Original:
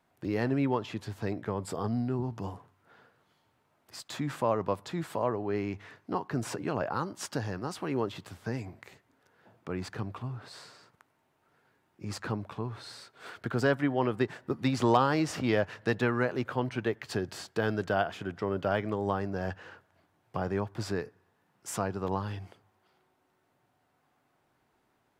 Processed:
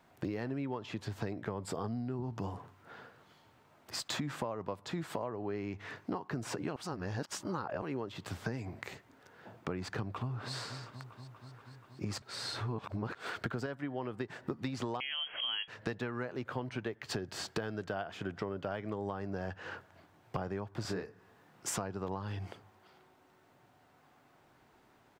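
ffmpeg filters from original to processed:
ffmpeg -i in.wav -filter_complex "[0:a]asplit=2[link_01][link_02];[link_02]afade=type=in:start_time=10.13:duration=0.01,afade=type=out:start_time=10.55:duration=0.01,aecho=0:1:240|480|720|960|1200|1440|1680|1920|2160|2400|2640|2880:0.16788|0.134304|0.107443|0.0859548|0.0687638|0.0550111|0.0440088|0.0352071|0.0281657|0.0225325|0.018026|0.0144208[link_03];[link_01][link_03]amix=inputs=2:normalize=0,asettb=1/sr,asplit=3[link_04][link_05][link_06];[link_04]atrim=end=15.004[link_07];[link_05]atrim=start=15:end=15.68,asetpts=PTS-STARTPTS,afade=type=in:duration=0.004:curve=qsin,afade=type=out:start_time=0.676:duration=0.004:curve=qsin,lowpass=frequency=2900:width_type=q:width=0.5098,lowpass=frequency=2900:width_type=q:width=0.6013,lowpass=frequency=2900:width_type=q:width=0.9,lowpass=frequency=2900:width_type=q:width=2.563,afreqshift=-3400[link_08];[link_06]atrim=start=15.676[link_09];[link_07][link_08]acrossfade=duration=0.004:curve1=hsin:curve2=qsin[link_10];[link_10][link_09]acrossfade=duration=0.004:curve1=qsin:curve2=hsin,asettb=1/sr,asplit=3[link_11][link_12][link_13];[link_11]atrim=end=20.824[link_14];[link_12]atrim=start=20.82:end=21.69,asetpts=PTS-STARTPTS,afade=type=in:duration=0.004:curve=qsin,afade=type=out:start_time=0.866:duration=0.004:curve=qsin,asplit=2[link_15][link_16];[link_16]adelay=27,volume=-3.5dB[link_17];[link_15][link_17]amix=inputs=2:normalize=0,atrim=end_sample=38367[link_18];[link_13]atrim=start=21.686[link_19];[link_14][link_18]acrossfade=duration=0.004:curve1=hsin:curve2=qsin[link_20];[link_20][link_19]acrossfade=duration=0.004:curve1=qsin:curve2=hsin,asplit=7[link_21][link_22][link_23][link_24][link_25][link_26][link_27];[link_21]atrim=end=6.762[link_28];[link_22]atrim=start=6.758:end=7.822,asetpts=PTS-STARTPTS,areverse[link_29];[link_23]atrim=start=7.818:end=12.222[link_30];[link_24]atrim=start=12.218:end=13.152,asetpts=PTS-STARTPTS,areverse[link_31];[link_25]atrim=start=13.148:end=13.662[link_32];[link_26]atrim=start=13.658:end=14.302,asetpts=PTS-STARTPTS,volume=-4dB[link_33];[link_27]atrim=start=14.298[link_34];[link_28][link_29]acrossfade=duration=0.004:curve1=hsin:curve2=hsin[link_35];[link_35][link_30]acrossfade=duration=0.004:curve1=hsin:curve2=hsin[link_36];[link_36][link_31]acrossfade=duration=0.004:curve1=hsin:curve2=hsin[link_37];[link_37][link_32]acrossfade=duration=0.004:curve1=hsin:curve2=hsin[link_38];[link_38][link_33]acrossfade=duration=0.004:curve1=hsin:curve2=hsin[link_39];[link_39][link_34]acrossfade=duration=0.004:curve1=hsin:curve2=hsin,equalizer=frequency=11000:width=1.8:gain=-6.5,acompressor=threshold=-41dB:ratio=16,volume=7.5dB" out.wav

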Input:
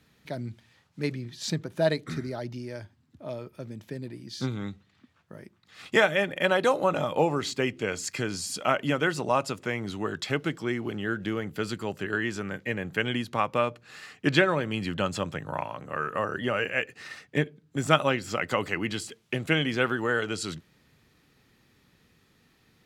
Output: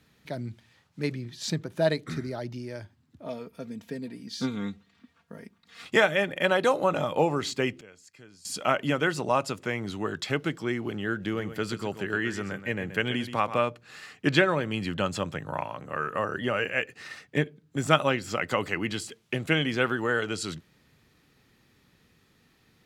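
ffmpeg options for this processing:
ffmpeg -i in.wav -filter_complex "[0:a]asettb=1/sr,asplit=3[link_01][link_02][link_03];[link_01]atrim=end=3.254[link_04];[link_02]atrim=start=3.25:end=5.84,asetpts=PTS-STARTPTS,afade=type=in:duration=0.004:curve=qsin,afade=type=out:start_time=2.586:duration=0.004:curve=qsin,aecho=1:1:4.3:0.65,atrim=end_sample=114219[link_05];[link_03]atrim=start=5.836[link_06];[link_04][link_05]acrossfade=duration=0.004:curve1=hsin:curve2=qsin[link_07];[link_07][link_06]acrossfade=duration=0.004:curve1=qsin:curve2=hsin,asettb=1/sr,asplit=3[link_08][link_09][link_10];[link_08]atrim=end=11.204[link_11];[link_09]atrim=start=11.2:end=13.63,asetpts=PTS-STARTPTS,afade=type=in:duration=0.004:curve=qsin,afade=type=out:start_time=2.426:duration=0.004:curve=qsin,aecho=1:1:128:0.266,atrim=end_sample=107163[link_12];[link_10]atrim=start=13.626[link_13];[link_11][link_12]acrossfade=duration=0.004:curve1=hsin:curve2=qsin[link_14];[link_14][link_13]acrossfade=duration=0.004:curve1=qsin:curve2=hsin,asplit=3[link_15][link_16][link_17];[link_15]atrim=end=7.81,asetpts=PTS-STARTPTS,afade=type=out:start_time=7.67:duration=0.14:curve=log:silence=0.0891251[link_18];[link_16]atrim=start=7.81:end=8.45,asetpts=PTS-STARTPTS,volume=-21dB[link_19];[link_17]atrim=start=8.45,asetpts=PTS-STARTPTS,afade=type=in:duration=0.14:curve=log:silence=0.0891251[link_20];[link_18][link_19][link_20]concat=n=3:v=0:a=1" out.wav

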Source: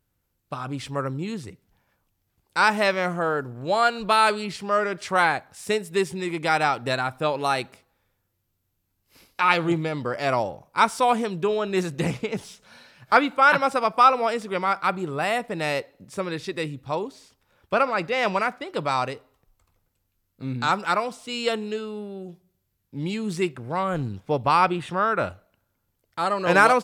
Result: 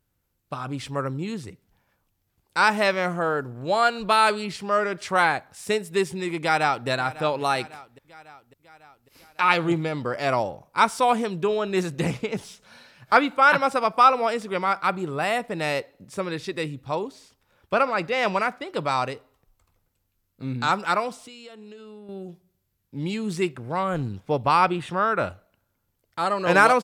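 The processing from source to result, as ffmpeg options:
ffmpeg -i in.wav -filter_complex "[0:a]asplit=2[link_01][link_02];[link_02]afade=type=in:start_time=6.39:duration=0.01,afade=type=out:start_time=6.88:duration=0.01,aecho=0:1:550|1100|1650|2200|2750|3300:0.149624|0.0897741|0.0538645|0.0323187|0.0193912|0.0116347[link_03];[link_01][link_03]amix=inputs=2:normalize=0,asettb=1/sr,asplit=3[link_04][link_05][link_06];[link_04]atrim=end=21.224[link_07];[link_05]atrim=start=21.22:end=22.09,asetpts=PTS-STARTPTS,afade=type=in:duration=0.004:curve=qsin,afade=type=out:start_time=0.866:duration=0.004:curve=qsin,acompressor=threshold=-40dB:ratio=10:attack=3.2:release=140:knee=1:detection=peak[link_08];[link_06]atrim=start=22.086[link_09];[link_07][link_08]acrossfade=duration=0.004:curve1=hsin:curve2=qsin[link_10];[link_10][link_09]acrossfade=duration=0.004:curve1=qsin:curve2=hsin" out.wav

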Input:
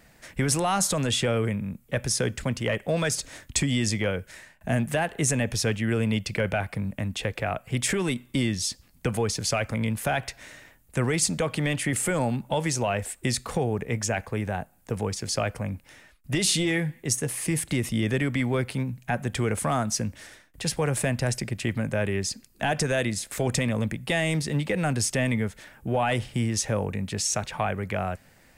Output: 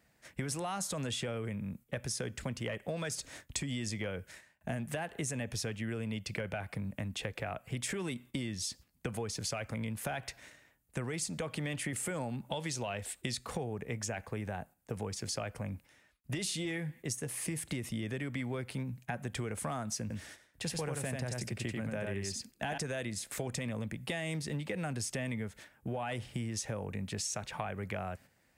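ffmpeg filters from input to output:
ffmpeg -i in.wav -filter_complex "[0:a]asettb=1/sr,asplit=3[link_01][link_02][link_03];[link_01]atrim=end=12.514[link_04];[link_02]atrim=start=12.51:end=13.39,asetpts=PTS-STARTPTS,afade=type=in:duration=0.004:curve=qsin,afade=type=out:start_time=0.876:duration=0.004:curve=qsin,equalizer=frequency=3700:width=1.5:gain=7.5[link_05];[link_03]atrim=start=13.386[link_06];[link_04][link_05]acrossfade=duration=0.004:curve1=hsin:curve2=qsin[link_07];[link_07][link_06]acrossfade=duration=0.004:curve1=qsin:curve2=hsin,asettb=1/sr,asplit=3[link_08][link_09][link_10];[link_08]atrim=end=20.014[link_11];[link_09]atrim=start=20.01:end=22.78,asetpts=PTS-STARTPTS,afade=type=in:duration=0.004:curve=qsin,afade=type=out:start_time=2.766:duration=0.004:curve=qsin,aecho=1:1:91:0.708,atrim=end_sample=122157[link_12];[link_10]atrim=start=22.776[link_13];[link_11][link_12]acrossfade=duration=0.004:curve1=hsin:curve2=qsin[link_14];[link_14][link_13]acrossfade=duration=0.004:curve1=qsin:curve2=hsin,highpass=47,agate=range=-8dB:threshold=-44dB:ratio=16:detection=peak,acompressor=threshold=-28dB:ratio=6,volume=-5.5dB" out.wav

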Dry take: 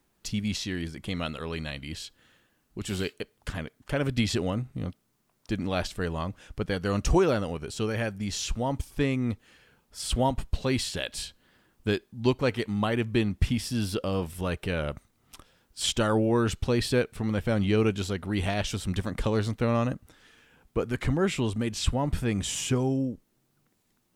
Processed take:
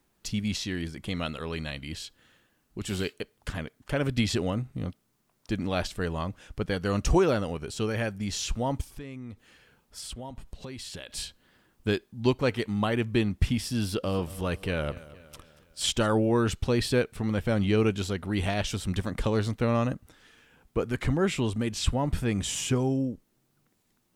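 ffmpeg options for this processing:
ffmpeg -i in.wav -filter_complex "[0:a]asplit=3[link_01][link_02][link_03];[link_01]afade=type=out:start_time=8.9:duration=0.02[link_04];[link_02]acompressor=threshold=-36dB:ratio=8:attack=3.2:release=140:knee=1:detection=peak,afade=type=in:start_time=8.9:duration=0.02,afade=type=out:start_time=11.09:duration=0.02[link_05];[link_03]afade=type=in:start_time=11.09:duration=0.02[link_06];[link_04][link_05][link_06]amix=inputs=3:normalize=0,asettb=1/sr,asplit=3[link_07][link_08][link_09];[link_07]atrim=end=13.804[link_10];[link_08]atrim=start=13.8:end=16.06,asetpts=PTS-STARTPTS,afade=type=in:duration=0.004:curve=qsin,afade=type=out:start_time=2.256:duration=0.004:curve=qsin,aecho=1:1:233|466|699|932:0.126|0.0655|0.034|0.0177,atrim=end_sample=99666[link_11];[link_09]atrim=start=16.056[link_12];[link_10][link_11]acrossfade=duration=0.004:curve1=hsin:curve2=qsin[link_13];[link_13][link_12]acrossfade=duration=0.004:curve1=qsin:curve2=hsin" out.wav

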